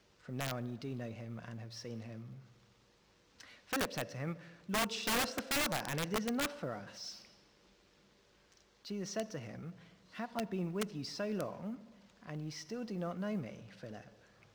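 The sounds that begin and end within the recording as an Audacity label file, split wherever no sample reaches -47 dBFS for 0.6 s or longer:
3.400000	7.250000	sound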